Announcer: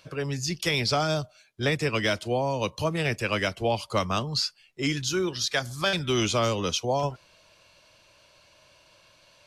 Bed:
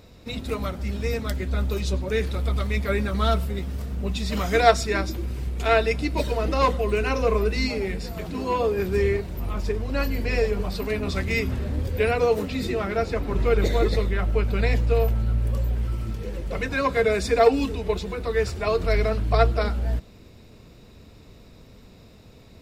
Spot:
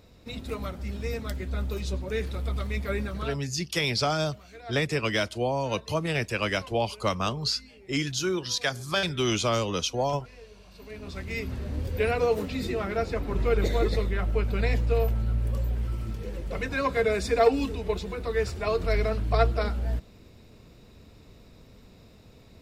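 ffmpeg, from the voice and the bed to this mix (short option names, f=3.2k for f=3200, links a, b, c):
-filter_complex "[0:a]adelay=3100,volume=-1dB[a];[1:a]volume=17.5dB,afade=t=out:st=3.03:d=0.37:silence=0.0891251,afade=t=in:st=10.67:d=1.3:silence=0.0707946[b];[a][b]amix=inputs=2:normalize=0"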